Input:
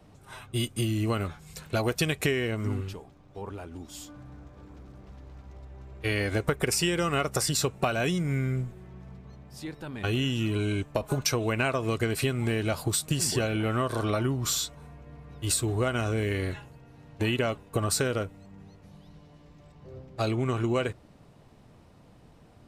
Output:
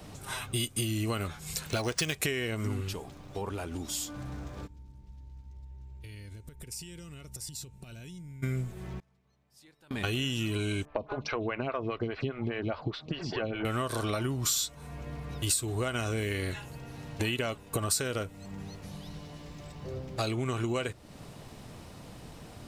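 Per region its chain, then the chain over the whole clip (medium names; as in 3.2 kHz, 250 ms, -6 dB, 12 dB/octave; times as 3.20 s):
1.69–2.15 s: treble shelf 5.9 kHz +7 dB + decimation joined by straight lines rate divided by 3×
4.66–8.42 s: amplifier tone stack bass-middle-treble 10-0-1 + compression 12:1, threshold -49 dBFS + whistle 900 Hz -78 dBFS
8.99–9.91 s: bass shelf 420 Hz -6 dB + inverted gate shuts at -46 dBFS, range -27 dB
10.85–13.65 s: Bessel low-pass 2.5 kHz, order 8 + lamp-driven phase shifter 4.9 Hz
whole clip: treble shelf 2.7 kHz +9 dB; compression 2.5:1, threshold -42 dBFS; trim +7.5 dB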